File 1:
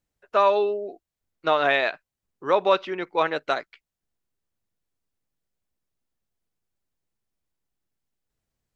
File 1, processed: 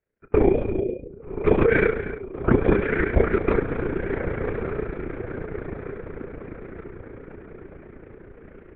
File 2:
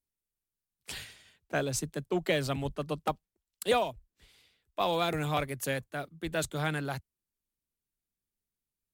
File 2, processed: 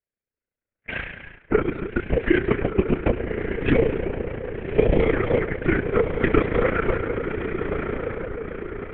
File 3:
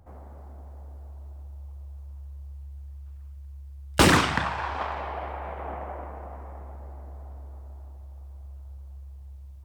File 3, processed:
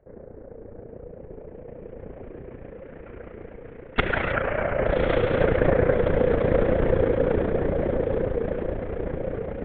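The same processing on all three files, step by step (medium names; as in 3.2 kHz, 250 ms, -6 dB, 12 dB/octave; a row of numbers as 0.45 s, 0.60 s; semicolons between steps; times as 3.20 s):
recorder AGC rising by 11 dB/s; mistuned SSB -230 Hz 390–2400 Hz; overload inside the chain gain 2 dB; static phaser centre 390 Hz, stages 4; compression 4:1, threshold -28 dBFS; on a send: echo that smears into a reverb 1197 ms, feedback 52%, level -5.5 dB; on the sum: gated-style reverb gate 340 ms flat, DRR 9 dB; LPC vocoder at 8 kHz whisper; AM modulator 29 Hz, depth 45%; tape noise reduction on one side only decoder only; normalise loudness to -24 LUFS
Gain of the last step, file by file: +13.5 dB, +14.0 dB, +12.0 dB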